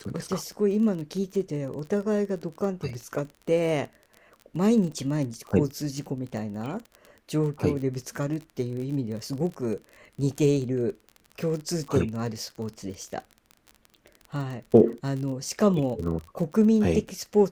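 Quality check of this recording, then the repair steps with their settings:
crackle 32/s -33 dBFS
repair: de-click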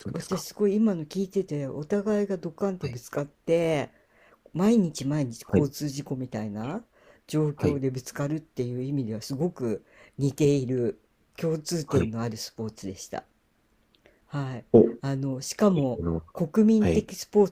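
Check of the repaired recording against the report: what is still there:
none

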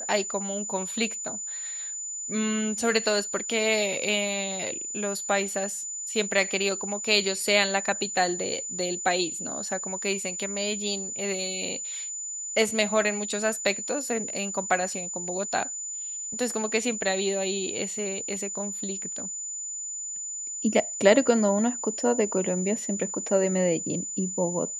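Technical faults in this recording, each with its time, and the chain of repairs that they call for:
tone 7000 Hz -32 dBFS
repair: notch 7000 Hz, Q 30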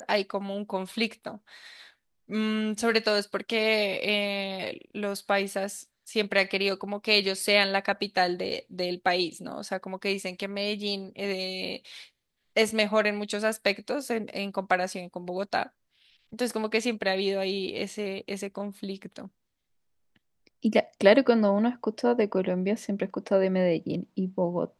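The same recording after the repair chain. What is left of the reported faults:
none

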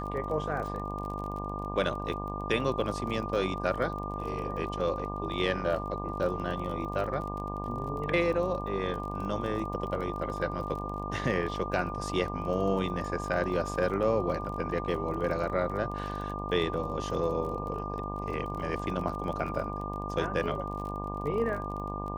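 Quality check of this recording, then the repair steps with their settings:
buzz 50 Hz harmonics 23 -37 dBFS
crackle 27/s -37 dBFS
tone 1200 Hz -37 dBFS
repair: de-click; notch 1200 Hz, Q 30; de-hum 50 Hz, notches 23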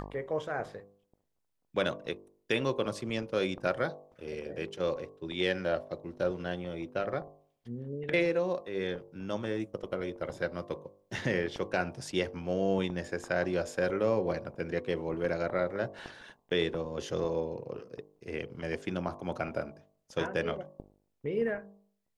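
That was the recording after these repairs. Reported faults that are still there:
none

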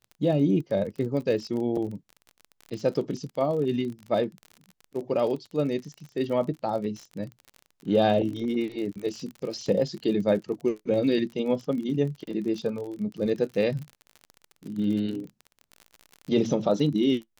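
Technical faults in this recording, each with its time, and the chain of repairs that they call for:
crackle 38/s -34 dBFS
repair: de-click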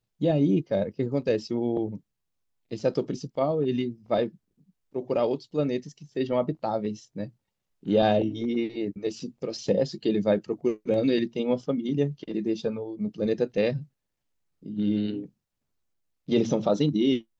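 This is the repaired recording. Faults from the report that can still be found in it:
none

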